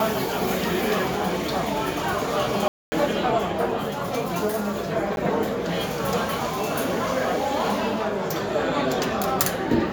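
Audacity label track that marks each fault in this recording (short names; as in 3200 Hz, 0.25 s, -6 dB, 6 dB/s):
2.680000	2.920000	gap 0.24 s
5.160000	5.170000	gap 11 ms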